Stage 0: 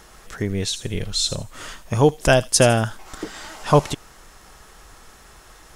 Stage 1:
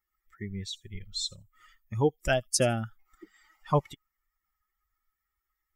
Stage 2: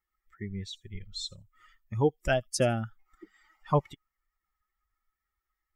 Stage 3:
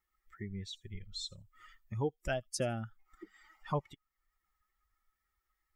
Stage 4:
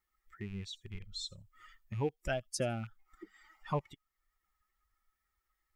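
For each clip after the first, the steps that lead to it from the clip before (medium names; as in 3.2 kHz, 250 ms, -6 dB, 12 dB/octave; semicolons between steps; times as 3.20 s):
expander on every frequency bin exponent 2; trim -7.5 dB
treble shelf 4.3 kHz -8.5 dB
compression 1.5:1, threshold -52 dBFS, peak gain reduction 11.5 dB; trim +2 dB
rattle on loud lows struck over -44 dBFS, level -44 dBFS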